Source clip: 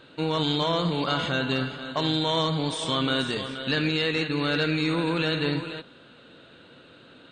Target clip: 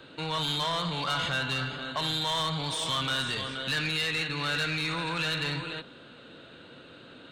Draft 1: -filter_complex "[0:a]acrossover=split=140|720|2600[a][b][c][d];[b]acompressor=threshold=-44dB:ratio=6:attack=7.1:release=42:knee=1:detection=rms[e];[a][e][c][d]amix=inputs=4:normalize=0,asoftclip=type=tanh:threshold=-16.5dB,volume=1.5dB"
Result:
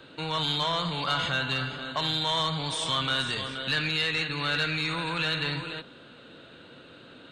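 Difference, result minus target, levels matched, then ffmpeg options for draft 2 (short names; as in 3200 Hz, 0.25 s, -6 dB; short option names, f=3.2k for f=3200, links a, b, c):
soft clip: distortion -10 dB
-filter_complex "[0:a]acrossover=split=140|720|2600[a][b][c][d];[b]acompressor=threshold=-44dB:ratio=6:attack=7.1:release=42:knee=1:detection=rms[e];[a][e][c][d]amix=inputs=4:normalize=0,asoftclip=type=tanh:threshold=-24dB,volume=1.5dB"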